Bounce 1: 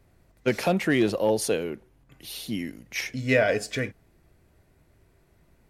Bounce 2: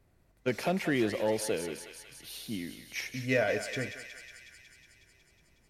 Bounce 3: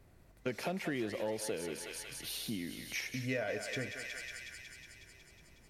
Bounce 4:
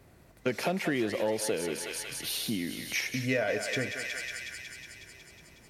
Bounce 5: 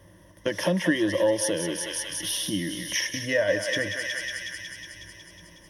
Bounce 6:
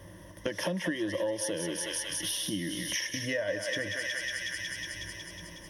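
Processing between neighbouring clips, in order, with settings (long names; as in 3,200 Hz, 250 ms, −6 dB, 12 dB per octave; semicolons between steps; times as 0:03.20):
feedback echo with a high-pass in the loop 183 ms, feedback 76%, high-pass 970 Hz, level −7.5 dB; level −6.5 dB
downward compressor 3 to 1, threshold −43 dBFS, peak gain reduction 14.5 dB; level +5 dB
high-pass filter 99 Hz 6 dB per octave; level +7.5 dB
EQ curve with evenly spaced ripples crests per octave 1.2, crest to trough 16 dB; level +2 dB
downward compressor 3 to 1, threshold −37 dBFS, peak gain reduction 14.5 dB; level +4 dB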